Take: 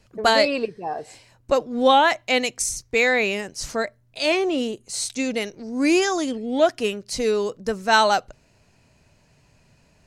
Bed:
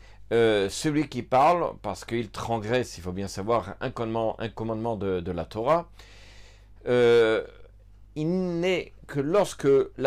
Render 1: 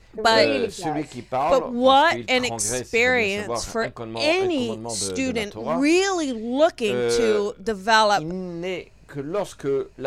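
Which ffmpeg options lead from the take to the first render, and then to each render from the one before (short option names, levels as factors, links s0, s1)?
-filter_complex "[1:a]volume=0.668[s0];[0:a][s0]amix=inputs=2:normalize=0"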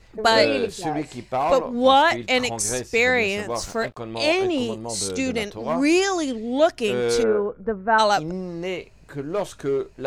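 -filter_complex "[0:a]asettb=1/sr,asplit=3[s0][s1][s2];[s0]atrim=end=3.504[s3];[s1]atrim=start=3.5:end=3.97,asetpts=PTS-STARTPTS,afade=t=in:d=0.004:c=qsin,afade=t=out:st=0.466:d=0.004:c=qsin,aeval=exprs='sgn(val(0))*max(abs(val(0))-0.00422,0)':c=same[s4];[s2]atrim=start=3.966[s5];[s3][s4]acrossfade=d=0.004:c1=hsin:c2=qsin[s6];[s6][s5]acrossfade=d=0.004:c1=qsin:c2=hsin,asplit=3[s7][s8][s9];[s7]afade=t=out:st=7.22:d=0.02[s10];[s8]lowpass=f=1600:w=0.5412,lowpass=f=1600:w=1.3066,afade=t=in:st=7.22:d=0.02,afade=t=out:st=7.98:d=0.02[s11];[s9]afade=t=in:st=7.98:d=0.02[s12];[s10][s11][s12]amix=inputs=3:normalize=0"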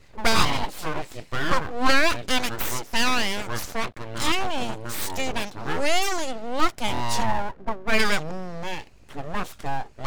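-af "aeval=exprs='abs(val(0))':c=same"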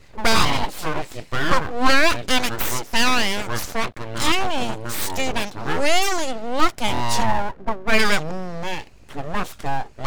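-af "volume=1.58,alimiter=limit=0.708:level=0:latency=1"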